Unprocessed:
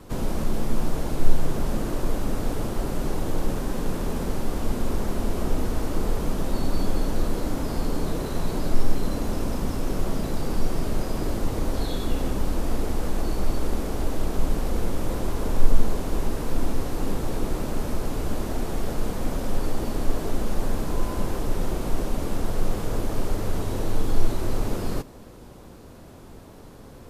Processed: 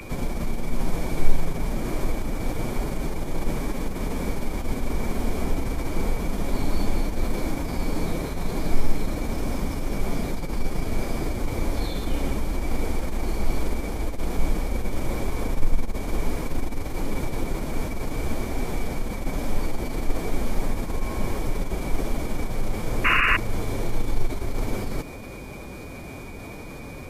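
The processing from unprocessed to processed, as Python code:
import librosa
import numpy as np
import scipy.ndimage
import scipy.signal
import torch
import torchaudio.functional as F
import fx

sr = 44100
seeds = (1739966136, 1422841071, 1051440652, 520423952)

y = x + 10.0 ** (-35.0 / 20.0) * np.sin(2.0 * np.pi * 2300.0 * np.arange(len(x)) / sr)
y = fx.pitch_keep_formants(y, sr, semitones=1.0)
y = fx.spec_paint(y, sr, seeds[0], shape='noise', start_s=23.04, length_s=0.33, low_hz=1000.0, high_hz=2900.0, level_db=-20.0)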